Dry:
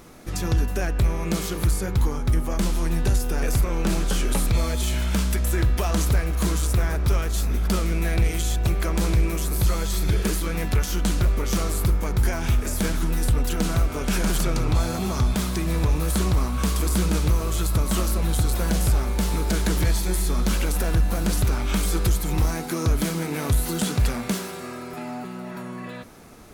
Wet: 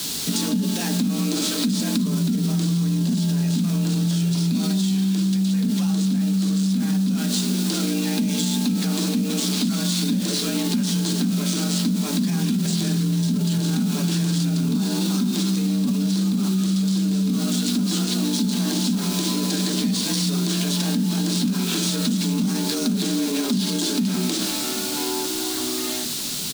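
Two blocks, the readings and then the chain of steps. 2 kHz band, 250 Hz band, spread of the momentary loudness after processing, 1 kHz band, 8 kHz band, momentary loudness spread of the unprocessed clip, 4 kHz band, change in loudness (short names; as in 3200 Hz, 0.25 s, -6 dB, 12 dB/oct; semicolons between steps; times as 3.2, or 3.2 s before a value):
-2.5 dB, +8.5 dB, 1 LU, -4.0 dB, +4.0 dB, 3 LU, +8.5 dB, +2.5 dB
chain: on a send: feedback echo 0.388 s, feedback 37%, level -22 dB; on the sum: FDN reverb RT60 0.36 s, low-frequency decay 1.35×, high-frequency decay 0.4×, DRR 3 dB; careless resampling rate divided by 3×, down none, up hold; frequency shift +130 Hz; bell 160 Hz +3.5 dB 0.58 oct; notches 60/120/180 Hz; requantised 6-bit, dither triangular; limiter -18.5 dBFS, peak gain reduction 13.5 dB; graphic EQ 125/250/500/1000/2000/4000/8000 Hz +3/+8/-9/-3/-5/+11/+5 dB; compressor, threshold -22 dBFS, peak gain reduction 6 dB; gain +3.5 dB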